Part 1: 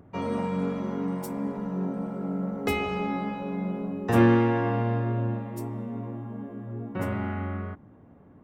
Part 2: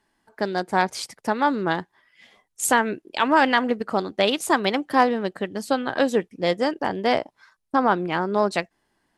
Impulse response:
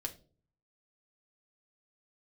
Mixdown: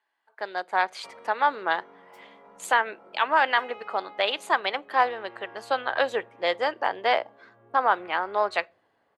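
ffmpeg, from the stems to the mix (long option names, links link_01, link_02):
-filter_complex "[0:a]acompressor=threshold=-30dB:ratio=6,adelay=900,volume=-10.5dB,asplit=2[link_01][link_02];[link_02]volume=-5.5dB[link_03];[1:a]equalizer=frequency=5400:width_type=o:width=0.21:gain=-9,dynaudnorm=framelen=190:gausssize=5:maxgain=11.5dB,lowshelf=frequency=260:gain=-7.5,volume=-6dB,asplit=2[link_04][link_05];[link_05]volume=-15.5dB[link_06];[2:a]atrim=start_sample=2205[link_07];[link_03][link_06]amix=inputs=2:normalize=0[link_08];[link_08][link_07]afir=irnorm=-1:irlink=0[link_09];[link_01][link_04][link_09]amix=inputs=3:normalize=0,acrossover=split=480 4500:gain=0.0708 1 0.158[link_10][link_11][link_12];[link_10][link_11][link_12]amix=inputs=3:normalize=0"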